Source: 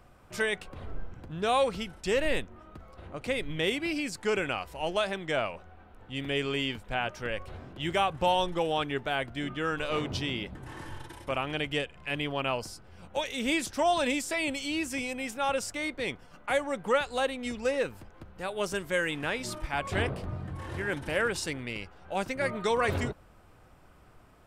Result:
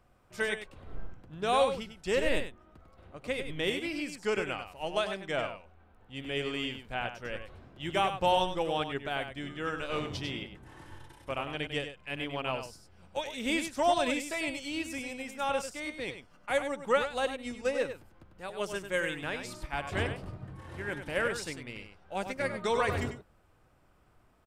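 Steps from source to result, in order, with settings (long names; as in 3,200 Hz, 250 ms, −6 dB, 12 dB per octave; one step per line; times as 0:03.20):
single-tap delay 98 ms −6.5 dB
expander for the loud parts 1.5 to 1, over −39 dBFS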